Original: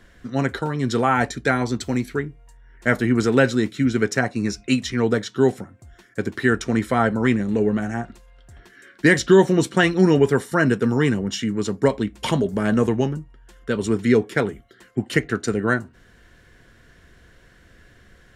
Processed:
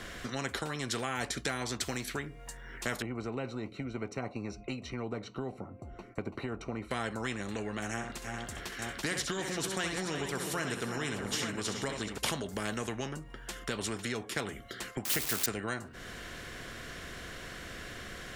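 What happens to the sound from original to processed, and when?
0:03.02–0:06.91: moving average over 26 samples
0:07.91–0:12.18: multi-tap delay 65/330/346/424/876 ms −11/−17.5/−16.5/−17/−14.5 dB
0:15.05–0:15.46: spike at every zero crossing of −18 dBFS
whole clip: notch filter 920 Hz, Q 13; downward compressor 3 to 1, threshold −33 dBFS; every bin compressed towards the loudest bin 2 to 1

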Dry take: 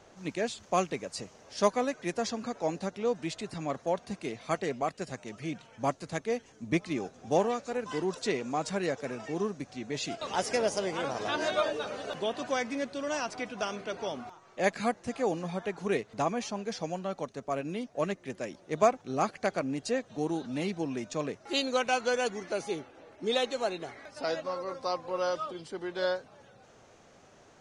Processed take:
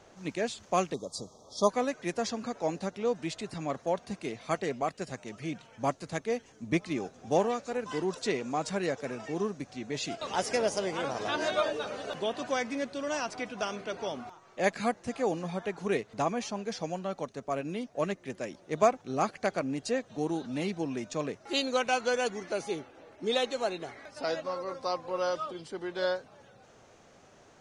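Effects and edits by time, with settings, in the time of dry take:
0:00.94–0:01.69: time-frequency box erased 1,300–3,200 Hz

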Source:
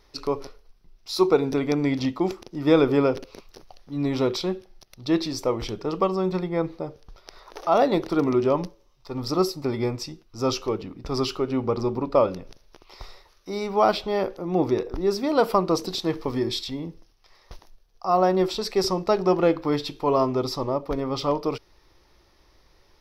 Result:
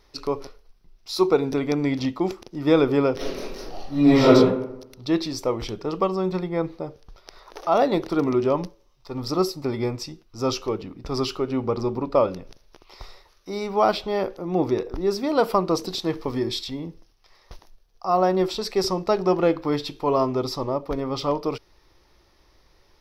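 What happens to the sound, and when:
0:03.16–0:04.31: thrown reverb, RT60 0.86 s, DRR −11.5 dB

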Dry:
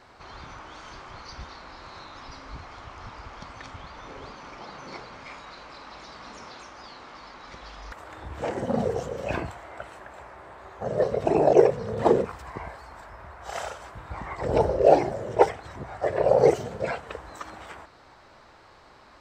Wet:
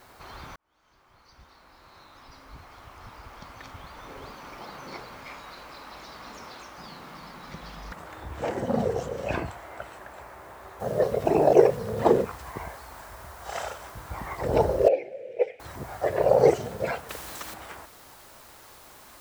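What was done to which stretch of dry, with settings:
0:00.56–0:04.56: fade in
0:06.77–0:08.07: parametric band 170 Hz +14 dB
0:10.80: noise floor change −62 dB −53 dB
0:14.88–0:15.60: pair of resonant band-passes 1,100 Hz, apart 2.2 octaves
0:17.09–0:17.54: every bin compressed towards the loudest bin 2 to 1

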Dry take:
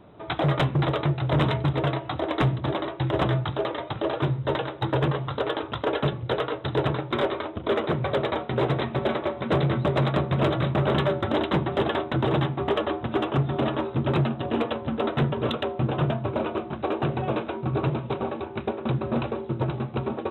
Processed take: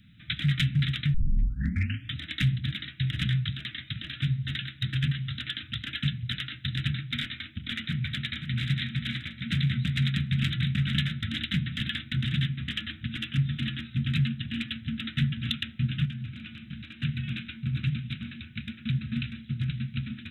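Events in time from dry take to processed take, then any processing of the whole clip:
0:01.14: tape start 1.02 s
0:07.88–0:08.69: delay throw 530 ms, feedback 35%, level −8 dB
0:16.05–0:17.00: downward compressor, threshold −28 dBFS
whole clip: inverse Chebyshev band-stop filter 360–1,100 Hz, stop band 40 dB; high-shelf EQ 3,000 Hz +8.5 dB; level −1 dB

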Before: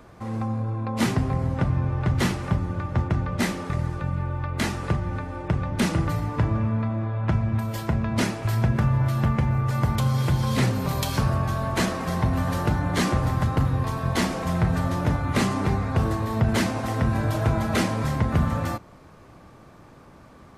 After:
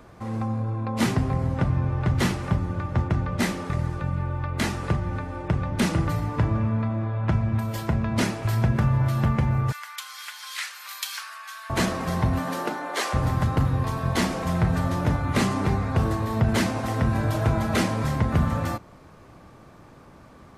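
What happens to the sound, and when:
0:09.72–0:11.70: high-pass filter 1,400 Hz 24 dB per octave
0:12.38–0:13.13: high-pass filter 160 Hz → 520 Hz 24 dB per octave

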